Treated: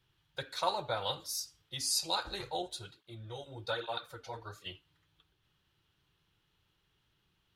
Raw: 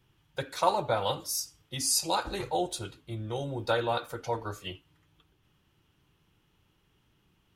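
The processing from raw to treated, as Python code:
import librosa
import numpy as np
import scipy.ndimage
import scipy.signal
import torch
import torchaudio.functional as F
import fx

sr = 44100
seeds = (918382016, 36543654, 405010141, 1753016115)

y = fx.graphic_eq_15(x, sr, hz=(250, 1600, 4000), db=(-6, 4, 9))
y = fx.flanger_cancel(y, sr, hz=1.2, depth_ms=7.1, at=(2.62, 4.66))
y = F.gain(torch.from_numpy(y), -7.5).numpy()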